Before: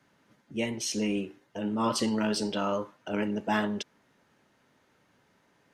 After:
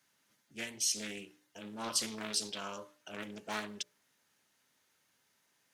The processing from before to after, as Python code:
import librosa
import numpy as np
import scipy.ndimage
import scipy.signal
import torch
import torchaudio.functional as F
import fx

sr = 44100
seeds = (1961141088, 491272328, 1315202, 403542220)

y = scipy.signal.lfilter([1.0, -0.9], [1.0], x)
y = fx.hum_notches(y, sr, base_hz=60, count=10)
y = fx.doppler_dist(y, sr, depth_ms=0.33)
y = F.gain(torch.from_numpy(y), 4.0).numpy()